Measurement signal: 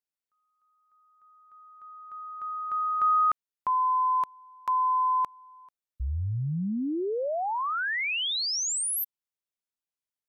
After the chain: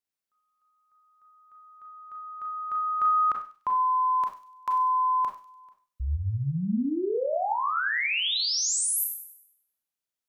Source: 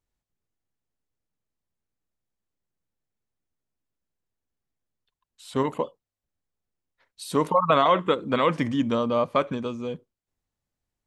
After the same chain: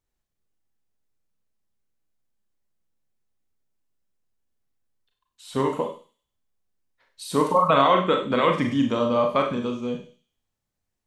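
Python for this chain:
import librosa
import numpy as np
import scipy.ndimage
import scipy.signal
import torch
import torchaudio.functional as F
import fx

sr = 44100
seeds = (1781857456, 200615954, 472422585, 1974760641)

y = fx.echo_wet_highpass(x, sr, ms=98, feedback_pct=41, hz=4300.0, wet_db=-8.5)
y = fx.rev_schroeder(y, sr, rt60_s=0.35, comb_ms=29, drr_db=2.5)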